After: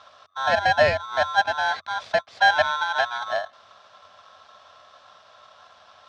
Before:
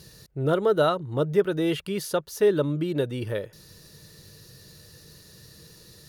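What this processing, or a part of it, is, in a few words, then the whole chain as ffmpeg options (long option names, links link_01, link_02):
ring modulator pedal into a guitar cabinet: -filter_complex "[0:a]aeval=exprs='val(0)*sgn(sin(2*PI*1200*n/s))':channel_layout=same,highpass=82,equalizer=frequency=88:width_type=q:width=4:gain=10,equalizer=frequency=150:width_type=q:width=4:gain=-4,equalizer=frequency=310:width_type=q:width=4:gain=-9,equalizer=frequency=630:width_type=q:width=4:gain=10,equalizer=frequency=2900:width_type=q:width=4:gain=-5,lowpass=frequency=4300:width=0.5412,lowpass=frequency=4300:width=1.3066,asettb=1/sr,asplit=3[link_01][link_02][link_03];[link_01]atrim=end=2.394[link_04];[link_02]atrim=start=2.39:end=3.18,asetpts=PTS-STARTPTS,afade=type=in:duration=0.004:curve=qsin,afade=type=out:start_time=0.786:duration=0.004:curve=qsin,equalizer=frequency=2400:width_type=o:width=1.1:gain=5.5[link_05];[link_03]atrim=start=3.176[link_06];[link_04][link_05]acrossfade=duration=0.004:curve1=hsin:curve2=qsin[link_07];[link_07][link_06]acrossfade=duration=0.004:curve1=qsin:curve2=hsin"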